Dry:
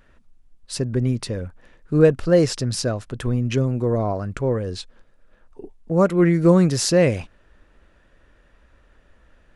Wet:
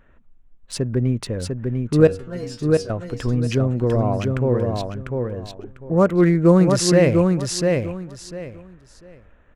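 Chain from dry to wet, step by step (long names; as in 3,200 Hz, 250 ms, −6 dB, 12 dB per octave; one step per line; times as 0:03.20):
adaptive Wiener filter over 9 samples
0:02.07–0:02.90: stiff-string resonator 93 Hz, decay 0.42 s, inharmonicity 0.002
repeating echo 698 ms, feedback 22%, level −4 dB
level +1 dB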